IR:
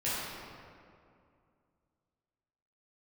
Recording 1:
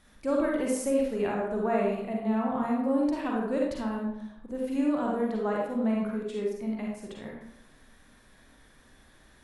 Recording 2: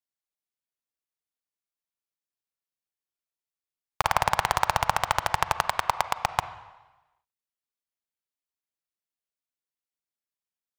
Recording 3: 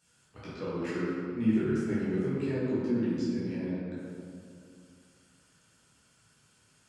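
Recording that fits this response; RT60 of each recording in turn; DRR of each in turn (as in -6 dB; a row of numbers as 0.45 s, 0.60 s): 3; 0.80 s, 1.1 s, 2.4 s; -2.5 dB, 11.5 dB, -11.0 dB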